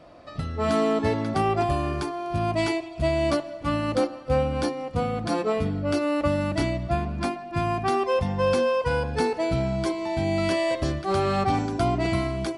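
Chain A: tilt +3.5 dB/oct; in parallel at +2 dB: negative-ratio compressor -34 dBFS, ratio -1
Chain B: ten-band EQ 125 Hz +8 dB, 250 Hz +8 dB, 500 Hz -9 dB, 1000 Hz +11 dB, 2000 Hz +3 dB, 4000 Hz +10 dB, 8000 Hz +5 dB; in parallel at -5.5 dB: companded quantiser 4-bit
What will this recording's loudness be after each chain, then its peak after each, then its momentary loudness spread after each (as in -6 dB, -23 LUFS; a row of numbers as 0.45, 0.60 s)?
-23.5, -16.5 LUFS; -9.0, -1.5 dBFS; 3, 5 LU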